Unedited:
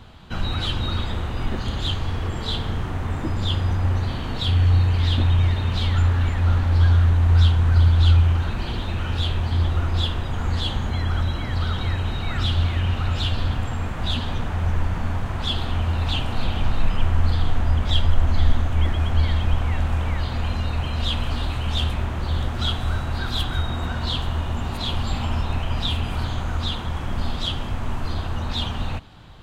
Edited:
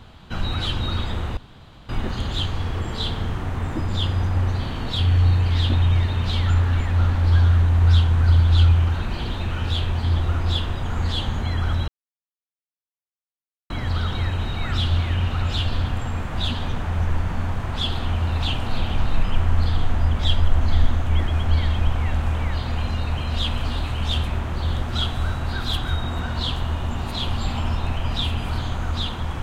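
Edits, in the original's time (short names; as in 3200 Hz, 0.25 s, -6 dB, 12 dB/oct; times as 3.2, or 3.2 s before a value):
1.37 insert room tone 0.52 s
11.36 insert silence 1.82 s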